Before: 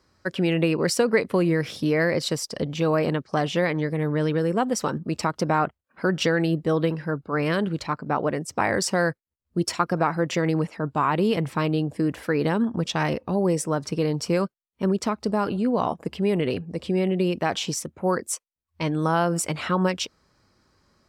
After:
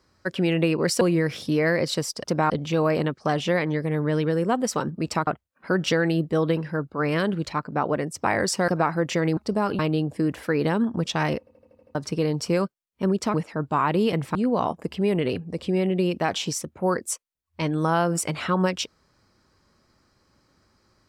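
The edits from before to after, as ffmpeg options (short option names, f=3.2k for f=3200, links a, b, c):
-filter_complex "[0:a]asplit=17[a][b][c][d][e][f][g][h][i][j][k][l][m][n][o][p][q];[a]atrim=end=1.012[r];[b]atrim=start=1.348:end=2.582[s];[c]atrim=start=5.348:end=5.612[t];[d]atrim=start=2.578:end=5.352[u];[e]atrim=start=5.608:end=9.022[v];[f]atrim=start=9.888:end=10.582[w];[g]atrim=start=15.138:end=15.562[x];[h]atrim=start=11.588:end=13.272[y];[i]atrim=start=13.188:end=13.272[z];[j]atrim=start=13.188:end=13.272[aa];[k]atrim=start=13.188:end=13.272[ab];[l]atrim=start=13.188:end=13.272[ac];[m]atrim=start=13.188:end=13.272[ad];[n]atrim=start=13.188:end=13.272[ae];[o]atrim=start=13.748:end=15.142[af];[p]atrim=start=10.578:end=11.592[ag];[q]atrim=start=15.558[ah];[r][s]acrossfade=d=0.004:c1=hsin:c2=hsin[ai];[ai][t]acrossfade=d=0.004:c1=hsin:c2=hsin[aj];[aj][u]acrossfade=d=0.004:c1=hsin:c2=hsin[ak];[ak][v]acrossfade=d=0.004:c1=hsin:c2=hsin[al];[al][w]acrossfade=d=0.004:c1=hsin:c2=hsin[am];[am][x]acrossfade=d=0.004:c1=hsin:c2=hsin[an];[an][y]acrossfade=d=0.004:c1=hsin:c2=hsin[ao];[ao][z]acrossfade=d=0.004:c1=hsin:c2=hsin[ap];[ap][aa]acrossfade=d=0.004:c1=hsin:c2=hsin[aq];[aq][ab]acrossfade=d=0.004:c1=hsin:c2=hsin[ar];[ar][ac]acrossfade=d=0.004:c1=hsin:c2=hsin[as];[as][ad]acrossfade=d=0.004:c1=hsin:c2=hsin[at];[at][ae]acrossfade=d=0.004:c1=hsin:c2=hsin[au];[au][af]acrossfade=d=0.004:c1=hsin:c2=hsin[av];[av][ag]acrossfade=d=0.004:c1=hsin:c2=hsin[aw];[aw][ah]acrossfade=d=0.004:c1=hsin:c2=hsin"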